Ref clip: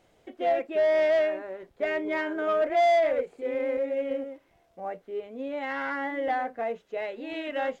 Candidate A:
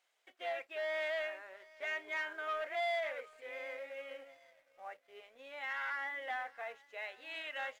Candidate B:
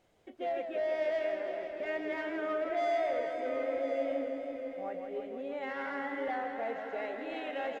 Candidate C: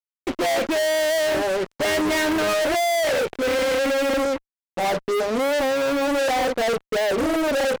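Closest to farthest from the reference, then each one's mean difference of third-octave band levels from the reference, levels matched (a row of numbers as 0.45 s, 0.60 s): B, A, C; 5.0 dB, 7.0 dB, 13.0 dB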